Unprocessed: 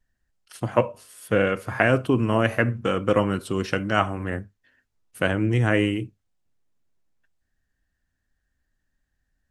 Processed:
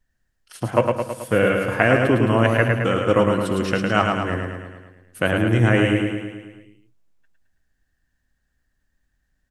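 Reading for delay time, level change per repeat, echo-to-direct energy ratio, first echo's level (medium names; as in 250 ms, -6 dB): 108 ms, -4.5 dB, -2.0 dB, -4.0 dB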